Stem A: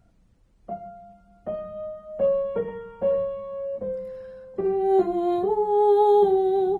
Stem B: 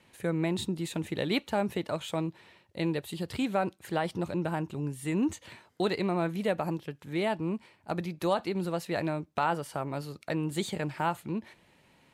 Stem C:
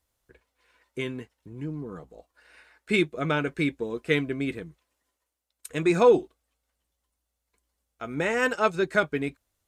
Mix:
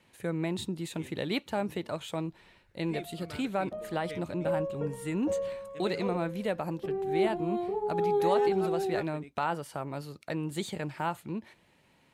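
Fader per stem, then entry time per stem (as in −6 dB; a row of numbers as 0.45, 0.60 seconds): −9.0, −2.5, −20.0 decibels; 2.25, 0.00, 0.00 seconds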